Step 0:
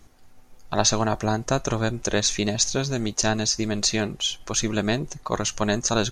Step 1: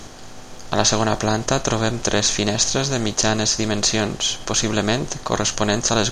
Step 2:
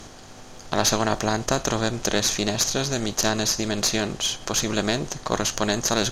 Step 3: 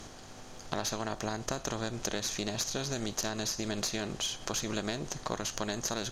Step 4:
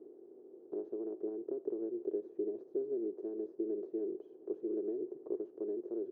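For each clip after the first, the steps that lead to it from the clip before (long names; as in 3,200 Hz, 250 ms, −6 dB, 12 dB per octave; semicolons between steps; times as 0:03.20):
compressor on every frequency bin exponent 0.6; level +1 dB
tube saturation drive 8 dB, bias 0.7
downward compressor, threshold −25 dBFS, peak gain reduction 9.5 dB; level −5 dB
flat-topped band-pass 380 Hz, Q 3.7; level +6.5 dB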